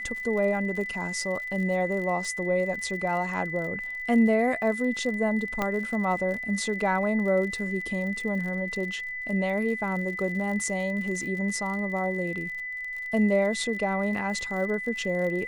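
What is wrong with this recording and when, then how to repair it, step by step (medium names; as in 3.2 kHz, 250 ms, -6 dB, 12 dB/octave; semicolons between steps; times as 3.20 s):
crackle 48 per s -35 dBFS
whine 2 kHz -32 dBFS
5.62 s: pop -13 dBFS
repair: de-click; band-stop 2 kHz, Q 30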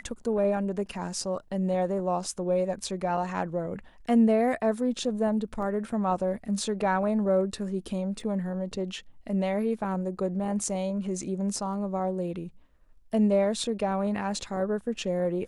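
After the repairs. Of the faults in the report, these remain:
5.62 s: pop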